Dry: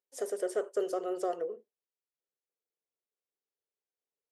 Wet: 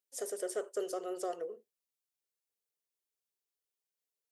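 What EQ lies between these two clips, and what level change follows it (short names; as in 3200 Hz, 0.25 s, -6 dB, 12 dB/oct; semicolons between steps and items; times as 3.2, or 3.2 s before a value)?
high shelf 3200 Hz +10 dB; -5.0 dB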